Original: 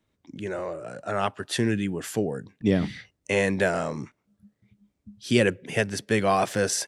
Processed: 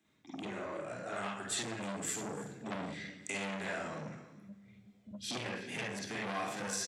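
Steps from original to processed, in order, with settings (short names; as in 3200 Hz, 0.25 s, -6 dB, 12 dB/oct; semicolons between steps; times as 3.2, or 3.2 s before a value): 1.16–3.38 bell 7800 Hz +12.5 dB 0.36 oct; compressor 2.5:1, threshold -41 dBFS, peak gain reduction 17 dB; echo 0.321 s -18 dB; reverb RT60 1.0 s, pre-delay 42 ms, DRR -4 dB; core saturation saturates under 1700 Hz; gain -1.5 dB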